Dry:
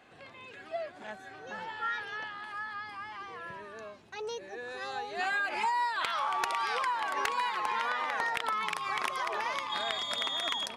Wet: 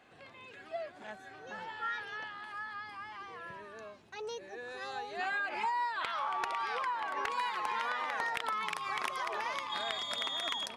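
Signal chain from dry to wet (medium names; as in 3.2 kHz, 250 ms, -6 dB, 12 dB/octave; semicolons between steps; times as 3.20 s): 5.16–7.29 s: treble shelf 6.8 kHz -> 4.3 kHz -11 dB; trim -3 dB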